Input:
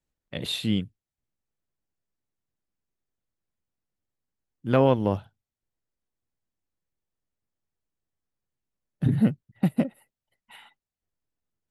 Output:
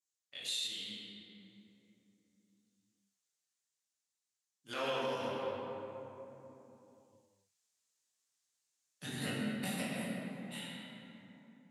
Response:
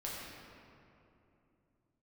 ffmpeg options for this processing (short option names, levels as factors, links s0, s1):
-filter_complex "[0:a]flanger=delay=20:depth=6.5:speed=0.43,dynaudnorm=f=540:g=5:m=4.47,bandpass=f=6800:t=q:w=2:csg=0[s0];[1:a]atrim=start_sample=2205,asetrate=37044,aresample=44100[s1];[s0][s1]afir=irnorm=-1:irlink=0,alimiter=level_in=4.73:limit=0.0631:level=0:latency=1:release=169,volume=0.211,asplit=3[s2][s3][s4];[s2]afade=t=out:st=0.66:d=0.02[s5];[s3]flanger=delay=7.6:depth=8.8:regen=68:speed=1:shape=triangular,afade=t=in:st=0.66:d=0.02,afade=t=out:st=4.68:d=0.02[s6];[s4]afade=t=in:st=4.68:d=0.02[s7];[s5][s6][s7]amix=inputs=3:normalize=0,volume=3.35"